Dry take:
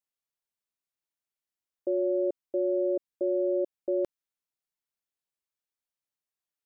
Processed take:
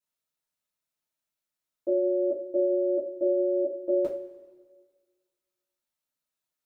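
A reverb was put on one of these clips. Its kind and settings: two-slope reverb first 0.31 s, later 1.6 s, from -17 dB, DRR -7 dB; trim -4 dB

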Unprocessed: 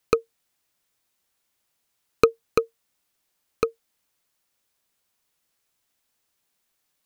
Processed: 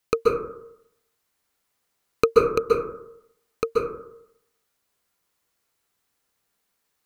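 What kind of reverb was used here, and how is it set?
plate-style reverb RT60 0.77 s, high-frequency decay 0.3×, pre-delay 120 ms, DRR -3 dB; trim -2.5 dB

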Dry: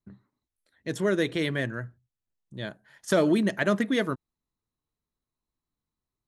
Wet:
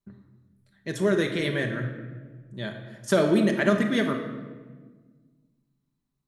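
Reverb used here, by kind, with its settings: simulated room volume 1300 m³, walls mixed, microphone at 1.2 m

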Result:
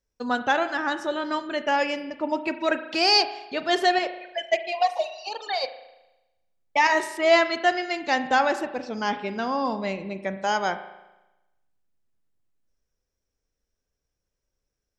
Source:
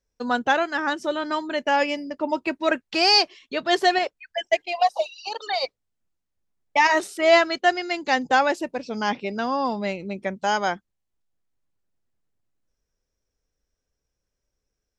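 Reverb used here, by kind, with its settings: spring tank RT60 1 s, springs 36 ms, chirp 35 ms, DRR 10 dB; trim -2 dB

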